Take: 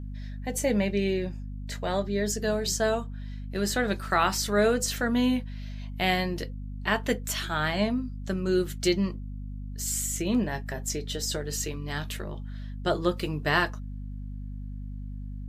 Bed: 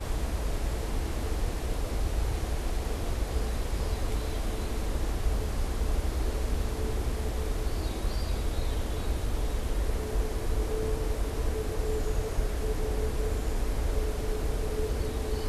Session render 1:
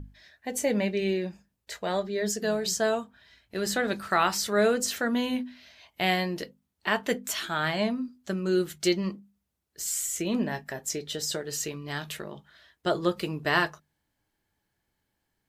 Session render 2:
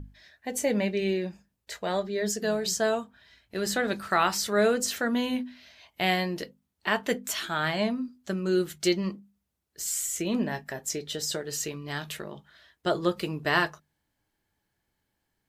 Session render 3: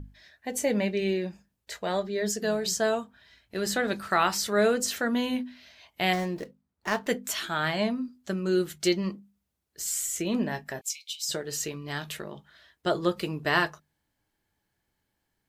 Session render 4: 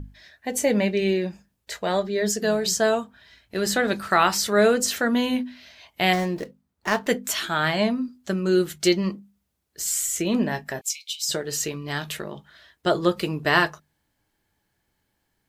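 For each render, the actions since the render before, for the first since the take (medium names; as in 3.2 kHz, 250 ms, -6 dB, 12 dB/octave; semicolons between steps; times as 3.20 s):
hum notches 50/100/150/200/250 Hz
no audible change
6.13–7.07 s: median filter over 15 samples; 10.81–11.29 s: brick-wall FIR high-pass 2.1 kHz
trim +5 dB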